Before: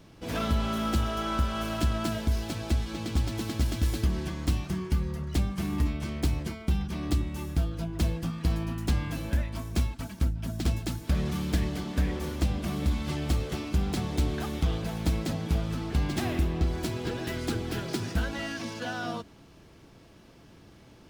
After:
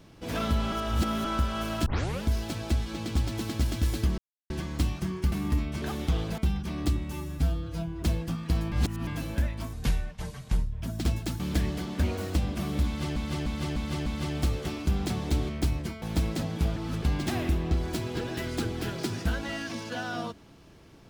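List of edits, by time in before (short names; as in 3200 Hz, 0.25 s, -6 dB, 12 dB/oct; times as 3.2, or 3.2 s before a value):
0.72–1.25 reverse
1.86 tape start 0.37 s
4.18 insert silence 0.32 s
5–5.6 cut
6.1–6.63 swap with 14.36–14.92
7.38–7.98 stretch 1.5×
8.67–9.02 reverse
9.68–10.42 speed 68%
11–11.38 cut
12.01–12.42 speed 127%
12.93–13.23 loop, 5 plays
15.66–15.92 reverse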